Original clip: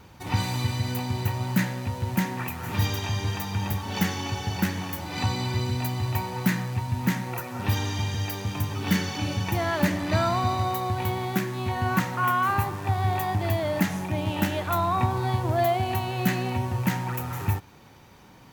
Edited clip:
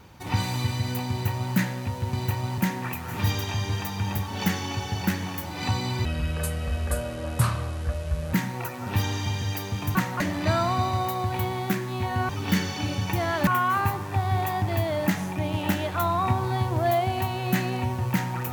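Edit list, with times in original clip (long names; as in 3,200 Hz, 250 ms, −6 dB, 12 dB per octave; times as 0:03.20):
0:01.10–0:01.55: duplicate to 0:02.13
0:05.60–0:07.06: play speed 64%
0:08.68–0:09.86: swap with 0:11.95–0:12.20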